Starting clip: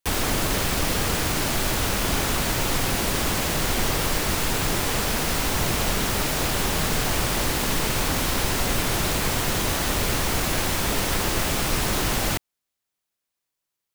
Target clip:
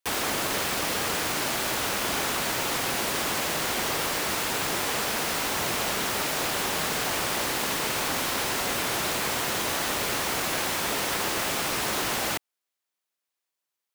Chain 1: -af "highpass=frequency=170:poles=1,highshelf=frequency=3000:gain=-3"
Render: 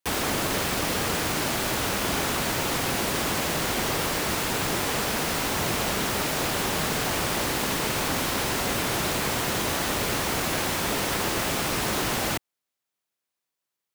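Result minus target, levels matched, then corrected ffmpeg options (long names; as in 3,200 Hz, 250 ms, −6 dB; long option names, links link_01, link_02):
125 Hz band +6.5 dB
-af "highpass=frequency=480:poles=1,highshelf=frequency=3000:gain=-3"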